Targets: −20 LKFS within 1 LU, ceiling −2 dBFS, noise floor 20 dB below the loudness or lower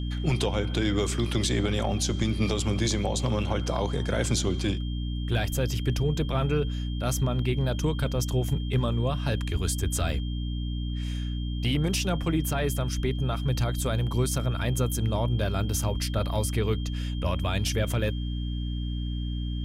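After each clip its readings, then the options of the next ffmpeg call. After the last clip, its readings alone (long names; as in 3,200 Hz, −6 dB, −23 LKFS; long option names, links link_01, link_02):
mains hum 60 Hz; hum harmonics up to 300 Hz; level of the hum −28 dBFS; interfering tone 3,200 Hz; level of the tone −44 dBFS; integrated loudness −28.0 LKFS; sample peak −13.5 dBFS; target loudness −20.0 LKFS
→ -af "bandreject=frequency=60:width_type=h:width=6,bandreject=frequency=120:width_type=h:width=6,bandreject=frequency=180:width_type=h:width=6,bandreject=frequency=240:width_type=h:width=6,bandreject=frequency=300:width_type=h:width=6"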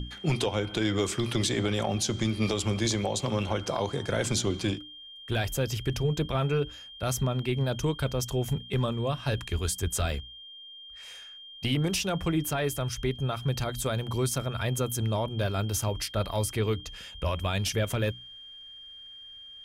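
mains hum none found; interfering tone 3,200 Hz; level of the tone −44 dBFS
→ -af "bandreject=frequency=3200:width=30"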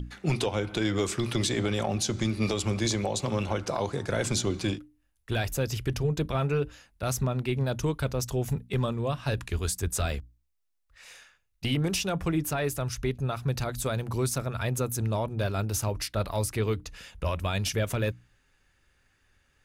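interfering tone none found; integrated loudness −29.5 LKFS; sample peak −15.5 dBFS; target loudness −20.0 LKFS
→ -af "volume=9.5dB"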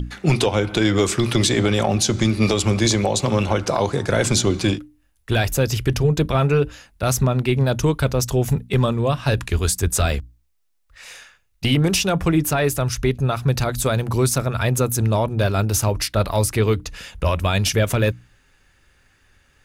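integrated loudness −20.0 LKFS; sample peak −6.0 dBFS; background noise floor −61 dBFS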